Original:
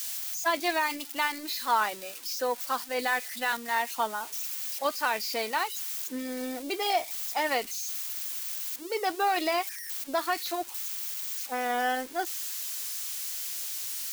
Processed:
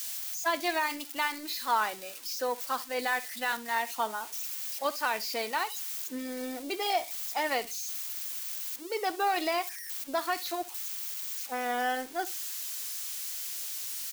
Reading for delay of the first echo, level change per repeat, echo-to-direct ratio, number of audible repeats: 65 ms, -15.5 dB, -18.5 dB, 2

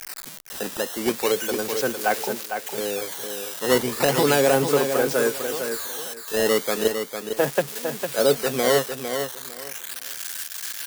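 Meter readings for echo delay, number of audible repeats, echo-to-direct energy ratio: 0.454 s, 3, -7.0 dB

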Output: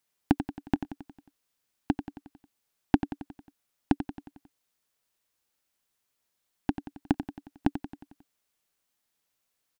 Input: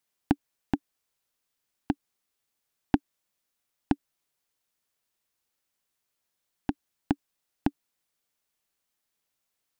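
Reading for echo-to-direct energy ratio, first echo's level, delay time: -9.0 dB, -10.5 dB, 90 ms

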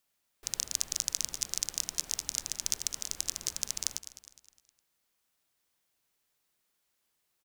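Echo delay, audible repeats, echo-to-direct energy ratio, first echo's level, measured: 0.206 s, 3, -13.0 dB, -14.0 dB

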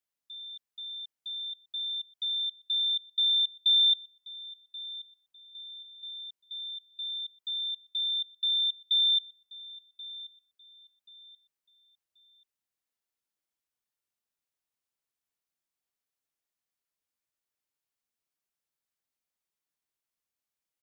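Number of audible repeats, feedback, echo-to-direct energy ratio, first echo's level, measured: 2, 29%, -17.5 dB, -18.0 dB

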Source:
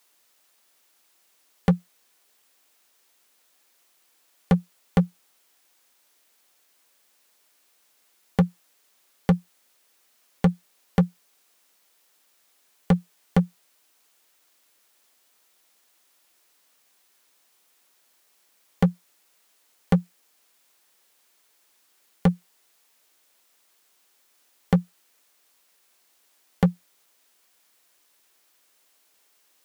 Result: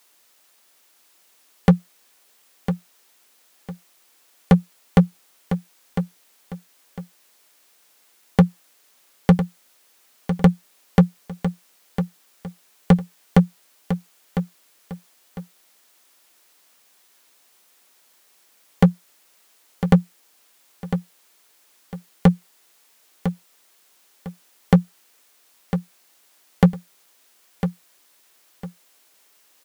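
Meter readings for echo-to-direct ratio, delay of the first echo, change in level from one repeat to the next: -9.0 dB, 1.003 s, -11.0 dB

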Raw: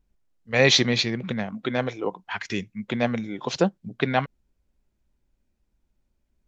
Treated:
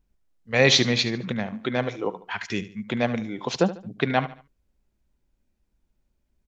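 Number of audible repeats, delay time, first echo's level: 3, 73 ms, -15.0 dB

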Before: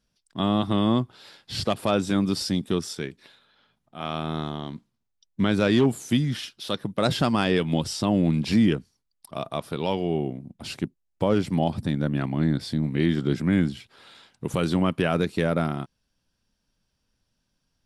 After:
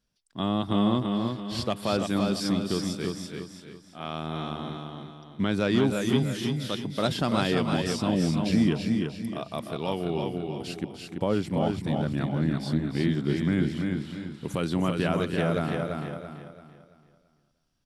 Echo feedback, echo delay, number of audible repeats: no steady repeat, 0.302 s, 8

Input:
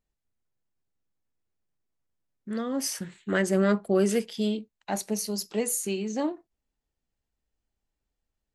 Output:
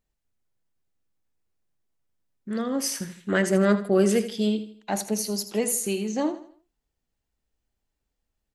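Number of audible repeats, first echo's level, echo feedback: 3, -13.0 dB, 38%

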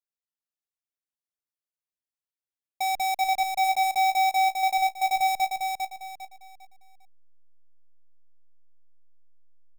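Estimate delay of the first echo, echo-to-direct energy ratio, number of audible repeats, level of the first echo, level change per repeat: 0.401 s, -3.5 dB, 4, -4.0 dB, -10.0 dB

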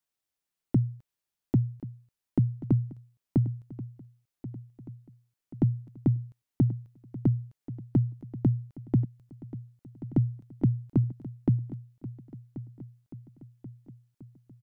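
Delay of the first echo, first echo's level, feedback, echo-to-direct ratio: 1.083 s, -15.5 dB, 56%, -14.0 dB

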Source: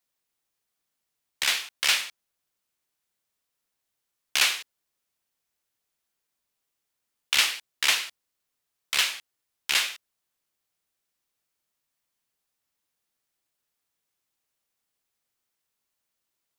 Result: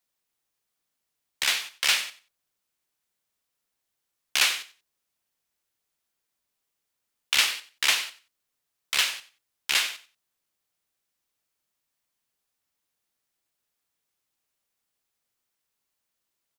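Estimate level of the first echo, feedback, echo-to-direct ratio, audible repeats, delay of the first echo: -17.0 dB, 21%, -17.0 dB, 2, 92 ms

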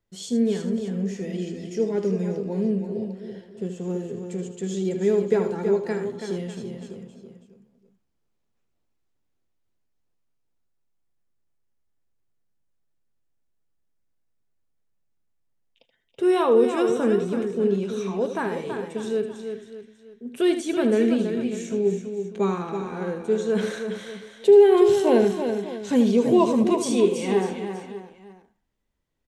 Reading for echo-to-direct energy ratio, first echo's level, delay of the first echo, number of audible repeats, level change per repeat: -5.0 dB, -10.0 dB, 78 ms, 5, no steady repeat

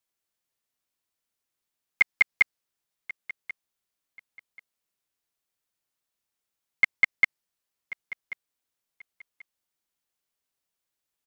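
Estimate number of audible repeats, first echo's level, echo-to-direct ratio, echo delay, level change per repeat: 2, -17.0 dB, -17.0 dB, 1.086 s, -12.5 dB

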